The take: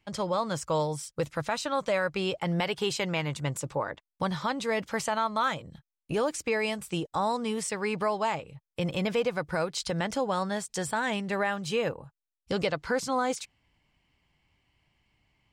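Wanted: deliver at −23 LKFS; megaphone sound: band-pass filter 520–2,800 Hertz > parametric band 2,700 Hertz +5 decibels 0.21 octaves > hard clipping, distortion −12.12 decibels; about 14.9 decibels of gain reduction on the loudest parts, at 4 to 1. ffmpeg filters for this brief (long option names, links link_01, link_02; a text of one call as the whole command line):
ffmpeg -i in.wav -af "acompressor=threshold=-42dB:ratio=4,highpass=520,lowpass=2800,equalizer=frequency=2700:width_type=o:width=0.21:gain=5,asoftclip=type=hard:threshold=-40dB,volume=25dB" out.wav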